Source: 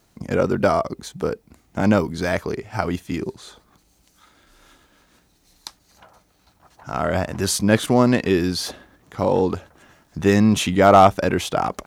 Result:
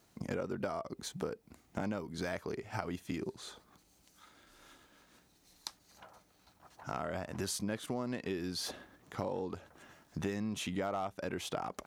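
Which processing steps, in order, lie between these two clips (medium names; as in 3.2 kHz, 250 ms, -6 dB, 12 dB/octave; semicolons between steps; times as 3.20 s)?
bass shelf 63 Hz -10 dB; compression 8:1, threshold -28 dBFS, peak gain reduction 20 dB; trim -6 dB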